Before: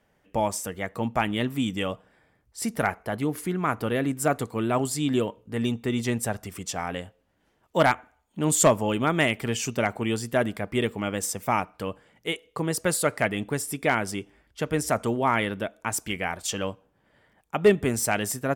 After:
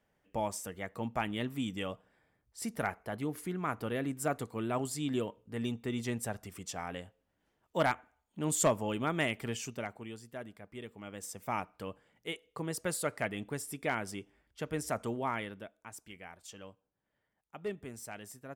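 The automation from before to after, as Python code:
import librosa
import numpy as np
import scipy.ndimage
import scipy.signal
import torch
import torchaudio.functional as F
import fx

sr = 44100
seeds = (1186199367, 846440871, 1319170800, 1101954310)

y = fx.gain(x, sr, db=fx.line((9.49, -9.0), (10.21, -20.0), (10.85, -20.0), (11.58, -10.0), (15.19, -10.0), (15.9, -20.0)))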